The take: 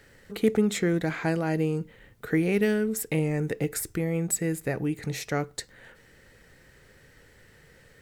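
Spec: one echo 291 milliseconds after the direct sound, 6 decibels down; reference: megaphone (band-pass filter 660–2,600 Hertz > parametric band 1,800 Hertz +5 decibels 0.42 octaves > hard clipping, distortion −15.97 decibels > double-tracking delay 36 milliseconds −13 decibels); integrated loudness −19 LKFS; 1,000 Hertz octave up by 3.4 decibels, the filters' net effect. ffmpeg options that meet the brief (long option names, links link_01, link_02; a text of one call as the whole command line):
ffmpeg -i in.wav -filter_complex "[0:a]highpass=660,lowpass=2600,equalizer=frequency=1000:width_type=o:gain=6.5,equalizer=frequency=1800:width_type=o:width=0.42:gain=5,aecho=1:1:291:0.501,asoftclip=type=hard:threshold=-23dB,asplit=2[link_01][link_02];[link_02]adelay=36,volume=-13dB[link_03];[link_01][link_03]amix=inputs=2:normalize=0,volume=14dB" out.wav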